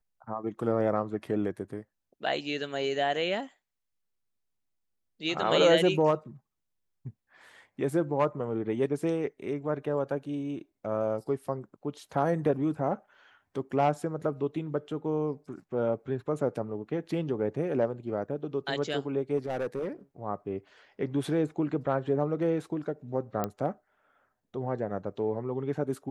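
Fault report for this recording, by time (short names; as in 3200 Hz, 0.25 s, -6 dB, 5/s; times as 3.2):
19.37–19.88 clipped -27 dBFS
23.44 pop -16 dBFS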